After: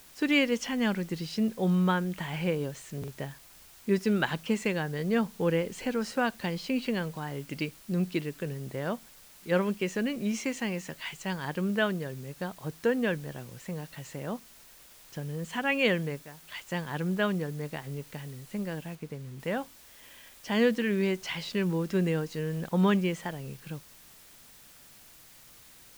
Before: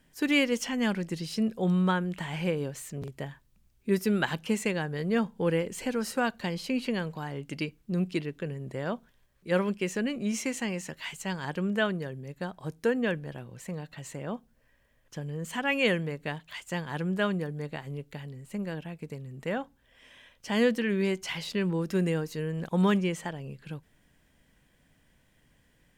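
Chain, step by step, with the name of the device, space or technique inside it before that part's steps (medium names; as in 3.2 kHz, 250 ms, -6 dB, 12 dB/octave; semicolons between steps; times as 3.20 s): worn cassette (low-pass 6.3 kHz; wow and flutter 16 cents; level dips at 16.23 s, 194 ms -13 dB; white noise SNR 23 dB); 18.95–19.40 s: treble shelf 3.9 kHz -7 dB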